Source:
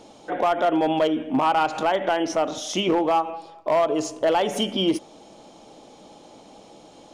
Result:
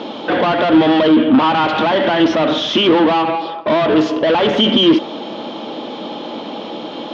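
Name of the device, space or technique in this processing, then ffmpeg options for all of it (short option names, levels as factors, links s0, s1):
overdrive pedal into a guitar cabinet: -filter_complex "[0:a]asplit=2[s0][s1];[s1]highpass=f=720:p=1,volume=20,asoftclip=type=tanh:threshold=0.224[s2];[s0][s2]amix=inputs=2:normalize=0,lowpass=f=2300:p=1,volume=0.501,highpass=97,equalizer=f=150:t=q:w=4:g=3,equalizer=f=230:t=q:w=4:g=9,equalizer=f=320:t=q:w=4:g=4,equalizer=f=740:t=q:w=4:g=-6,equalizer=f=2200:t=q:w=4:g=-3,equalizer=f=3300:t=q:w=4:g=6,lowpass=f=4200:w=0.5412,lowpass=f=4200:w=1.3066,volume=1.88"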